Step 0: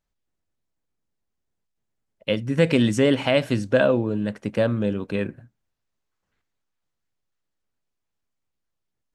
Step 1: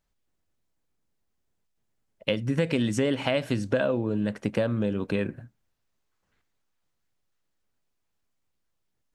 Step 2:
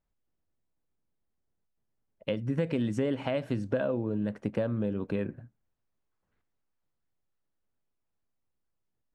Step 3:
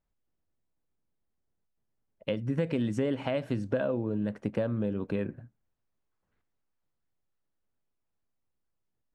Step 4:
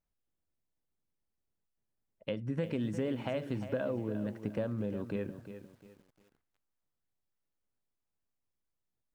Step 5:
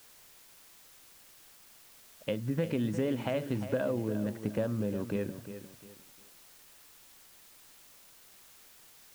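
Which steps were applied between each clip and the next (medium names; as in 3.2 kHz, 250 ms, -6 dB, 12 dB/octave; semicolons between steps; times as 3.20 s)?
compression 4:1, threshold -26 dBFS, peak gain reduction 11.5 dB; trim +3 dB
treble shelf 2.1 kHz -11.5 dB; trim -3.5 dB
no audible change
bit-crushed delay 353 ms, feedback 35%, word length 9-bit, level -11 dB; trim -5 dB
word length cut 10-bit, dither triangular; trim +3 dB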